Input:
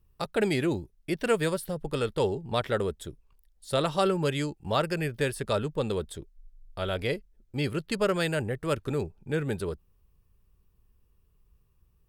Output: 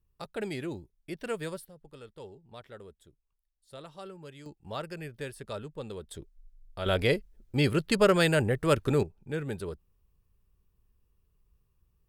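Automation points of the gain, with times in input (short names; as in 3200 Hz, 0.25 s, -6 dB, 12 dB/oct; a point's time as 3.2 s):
-9 dB
from 1.65 s -19.5 dB
from 4.46 s -10.5 dB
from 6.11 s -3 dB
from 6.86 s +4 dB
from 9.03 s -4.5 dB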